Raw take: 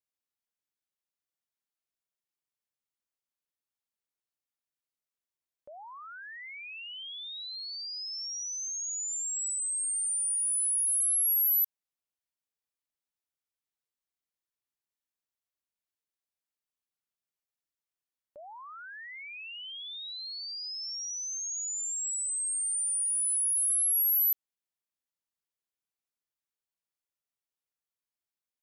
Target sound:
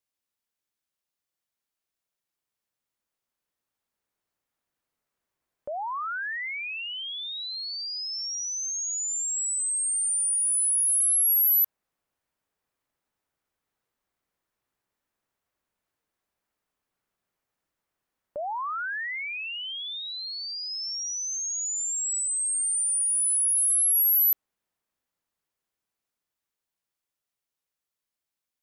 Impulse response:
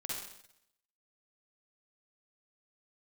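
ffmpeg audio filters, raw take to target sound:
-filter_complex "[0:a]acrossover=split=2000[link_01][link_02];[link_01]dynaudnorm=framelen=260:gausssize=31:maxgain=11dB[link_03];[link_03][link_02]amix=inputs=2:normalize=0,asettb=1/sr,asplit=3[link_04][link_05][link_06];[link_04]atrim=end=19.994[link_07];[link_05]atrim=start=19.99:end=20.71,asetpts=PTS-STARTPTS,afade=type=in:duration=0.004:curve=qsin,afade=type=out:start_time=0.716:duration=0.004:curve=qsin,tremolo=f=170:d=0.182[link_08];[link_06]atrim=start=20.706[link_09];[link_07][link_08]acrossfade=duration=0.004:curve1=hsin:curve2=qsin[link_10];[link_10][link_09]acrossfade=duration=0.004:curve1=qsin:curve2=hsin,volume=4.5dB"

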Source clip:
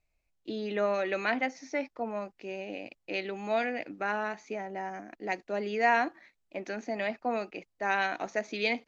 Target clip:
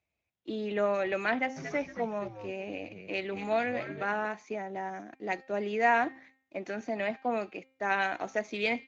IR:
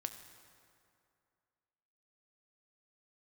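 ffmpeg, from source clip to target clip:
-filter_complex "[0:a]bandreject=frequency=264.3:width_type=h:width=4,bandreject=frequency=528.6:width_type=h:width=4,bandreject=frequency=792.9:width_type=h:width=4,bandreject=frequency=1057.2:width_type=h:width=4,bandreject=frequency=1321.5:width_type=h:width=4,bandreject=frequency=1585.8:width_type=h:width=4,bandreject=frequency=1850.1:width_type=h:width=4,bandreject=frequency=2114.4:width_type=h:width=4,bandreject=frequency=2378.7:width_type=h:width=4,bandreject=frequency=2643:width_type=h:width=4,bandreject=frequency=2907.3:width_type=h:width=4,bandreject=frequency=3171.6:width_type=h:width=4,bandreject=frequency=3435.9:width_type=h:width=4,bandreject=frequency=3700.2:width_type=h:width=4,bandreject=frequency=3964.5:width_type=h:width=4,bandreject=frequency=4228.8:width_type=h:width=4,bandreject=frequency=4493.1:width_type=h:width=4,bandreject=frequency=4757.4:width_type=h:width=4,bandreject=frequency=5021.7:width_type=h:width=4,bandreject=frequency=5286:width_type=h:width=4,bandreject=frequency=5550.3:width_type=h:width=4,asplit=3[link_01][link_02][link_03];[link_01]afade=type=out:start_time=1.56:duration=0.02[link_04];[link_02]asplit=5[link_05][link_06][link_07][link_08][link_09];[link_06]adelay=230,afreqshift=-100,volume=-9.5dB[link_10];[link_07]adelay=460,afreqshift=-200,volume=-19.1dB[link_11];[link_08]adelay=690,afreqshift=-300,volume=-28.8dB[link_12];[link_09]adelay=920,afreqshift=-400,volume=-38.4dB[link_13];[link_05][link_10][link_11][link_12][link_13]amix=inputs=5:normalize=0,afade=type=in:start_time=1.56:duration=0.02,afade=type=out:start_time=4.25:duration=0.02[link_14];[link_03]afade=type=in:start_time=4.25:duration=0.02[link_15];[link_04][link_14][link_15]amix=inputs=3:normalize=0" -ar 16000 -c:a libspeex -b:a 17k

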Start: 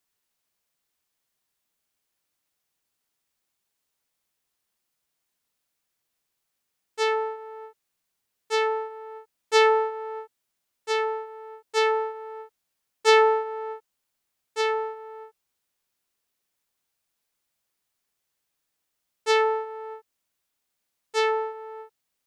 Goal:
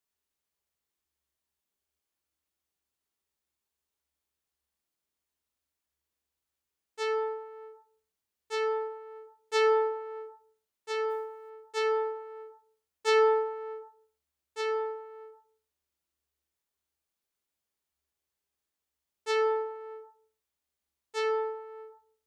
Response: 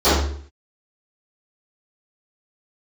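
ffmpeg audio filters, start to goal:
-filter_complex "[0:a]bandreject=frequency=349.3:width_type=h:width=4,bandreject=frequency=698.6:width_type=h:width=4,bandreject=frequency=1047.9:width_type=h:width=4,bandreject=frequency=1397.2:width_type=h:width=4,asplit=3[link_01][link_02][link_03];[link_01]afade=type=out:start_time=11.09:duration=0.02[link_04];[link_02]acrusher=bits=8:mode=log:mix=0:aa=0.000001,afade=type=in:start_time=11.09:duration=0.02,afade=type=out:start_time=11.49:duration=0.02[link_05];[link_03]afade=type=in:start_time=11.49:duration=0.02[link_06];[link_04][link_05][link_06]amix=inputs=3:normalize=0,asplit=2[link_07][link_08];[1:a]atrim=start_sample=2205[link_09];[link_08][link_09]afir=irnorm=-1:irlink=0,volume=-29.5dB[link_10];[link_07][link_10]amix=inputs=2:normalize=0,volume=-8.5dB"

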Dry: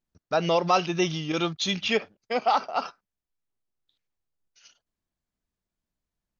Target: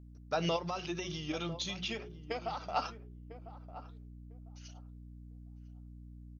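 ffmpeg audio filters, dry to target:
ffmpeg -i in.wav -filter_complex "[0:a]highshelf=frequency=5500:gain=5.5,bandreject=frequency=60:width_type=h:width=6,bandreject=frequency=120:width_type=h:width=6,bandreject=frequency=180:width_type=h:width=6,bandreject=frequency=240:width_type=h:width=6,bandreject=frequency=300:width_type=h:width=6,bandreject=frequency=360:width_type=h:width=6,bandreject=frequency=420:width_type=h:width=6,alimiter=limit=-17dB:level=0:latency=1:release=70,asettb=1/sr,asplit=3[link_01][link_02][link_03];[link_01]atrim=end=0.564[link_04];[link_02]atrim=start=0.56:end=2.68,asetpts=PTS-STARTPTS,afade=type=in:duration=0.004:curve=qsin,afade=type=out:start_time=2.116:duration=0.004:curve=qsin,acompressor=threshold=-31dB:ratio=6[link_05];[link_03]atrim=start=2.676[link_06];[link_04][link_05]acrossfade=duration=0.004:curve1=hsin:curve2=qsin[link_07];[link_07][link_06]acrossfade=duration=0.004:curve1=qsin:curve2=hsin,flanger=delay=1.7:depth=5.1:regen=66:speed=0.91:shape=sinusoidal,aeval=exprs='val(0)+0.00282*(sin(2*PI*60*n/s)+sin(2*PI*2*60*n/s)/2+sin(2*PI*3*60*n/s)/3+sin(2*PI*4*60*n/s)/4+sin(2*PI*5*60*n/s)/5)':channel_layout=same,asplit=2[link_08][link_09];[link_09]adelay=1000,lowpass=frequency=810:poles=1,volume=-12dB,asplit=2[link_10][link_11];[link_11]adelay=1000,lowpass=frequency=810:poles=1,volume=0.22,asplit=2[link_12][link_13];[link_13]adelay=1000,lowpass=frequency=810:poles=1,volume=0.22[link_14];[link_08][link_10][link_12][link_14]amix=inputs=4:normalize=0" out.wav

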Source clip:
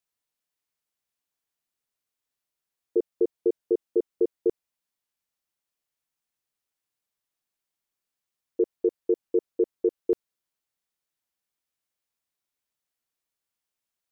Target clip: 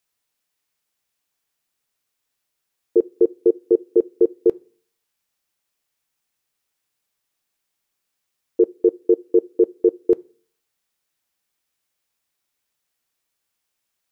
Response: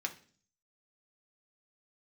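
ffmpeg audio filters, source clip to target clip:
-filter_complex "[0:a]asplit=2[link_01][link_02];[1:a]atrim=start_sample=2205,lowshelf=frequency=500:gain=-8[link_03];[link_02][link_03]afir=irnorm=-1:irlink=0,volume=-11dB[link_04];[link_01][link_04]amix=inputs=2:normalize=0,volume=7dB"

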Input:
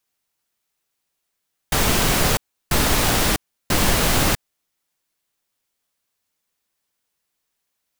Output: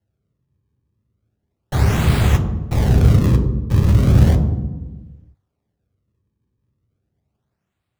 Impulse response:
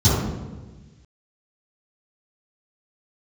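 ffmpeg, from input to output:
-filter_complex "[0:a]bandreject=frequency=97.88:width_type=h:width=4,bandreject=frequency=195.76:width_type=h:width=4,bandreject=frequency=293.64:width_type=h:width=4,bandreject=frequency=391.52:width_type=h:width=4,bandreject=frequency=489.4:width_type=h:width=4,bandreject=frequency=587.28:width_type=h:width=4,bandreject=frequency=685.16:width_type=h:width=4,acrusher=samples=36:mix=1:aa=0.000001:lfo=1:lforange=57.6:lforate=0.35,flanger=delay=9.7:depth=9.3:regen=-68:speed=1.6:shape=sinusoidal,asplit=2[link_01][link_02];[1:a]atrim=start_sample=2205,lowshelf=frequency=160:gain=5[link_03];[link_02][link_03]afir=irnorm=-1:irlink=0,volume=-25.5dB[link_04];[link_01][link_04]amix=inputs=2:normalize=0,volume=-1.5dB"

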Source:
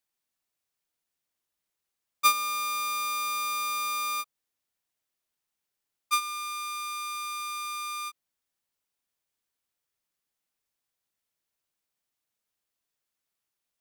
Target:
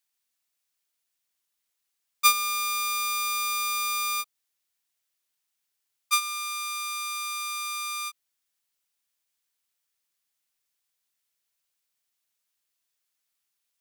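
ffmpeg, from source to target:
ffmpeg -i in.wav -af "tiltshelf=frequency=1200:gain=-5.5" out.wav

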